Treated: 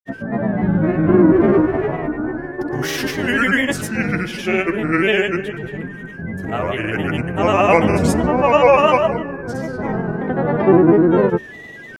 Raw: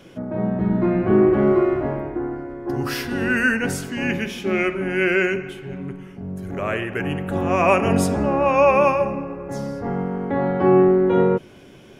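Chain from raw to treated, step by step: whistle 1.7 kHz -38 dBFS; granulator, pitch spread up and down by 3 st; trim +4.5 dB

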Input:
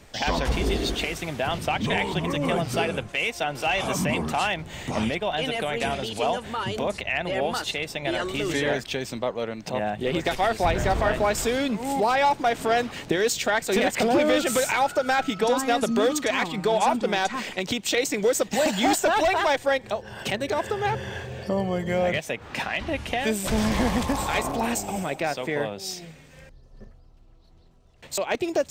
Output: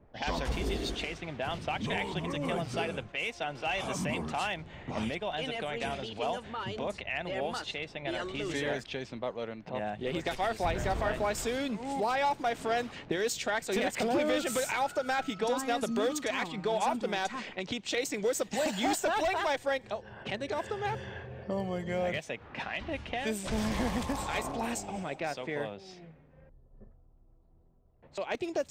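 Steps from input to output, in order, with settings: level-controlled noise filter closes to 810 Hz, open at -21 dBFS; trim -8 dB

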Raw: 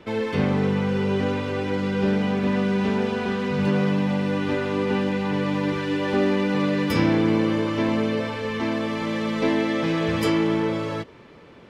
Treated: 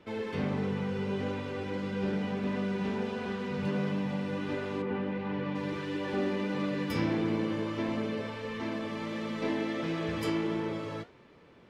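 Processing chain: 4.81–5.54 s: low-pass 2.1 kHz -> 3.5 kHz 12 dB/octave; flange 1.5 Hz, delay 9.7 ms, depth 9.5 ms, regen -67%; trim -5.5 dB

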